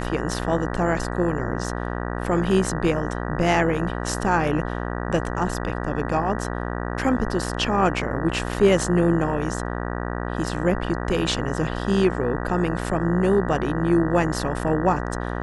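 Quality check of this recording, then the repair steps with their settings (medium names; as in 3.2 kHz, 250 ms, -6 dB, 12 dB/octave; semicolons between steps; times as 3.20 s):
buzz 60 Hz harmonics 32 -28 dBFS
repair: de-hum 60 Hz, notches 32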